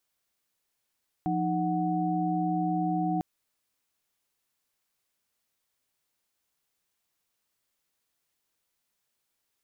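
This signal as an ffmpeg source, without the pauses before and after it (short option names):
-f lavfi -i "aevalsrc='0.0335*(sin(2*PI*174.61*t)+sin(2*PI*311.13*t)+sin(2*PI*739.99*t))':d=1.95:s=44100"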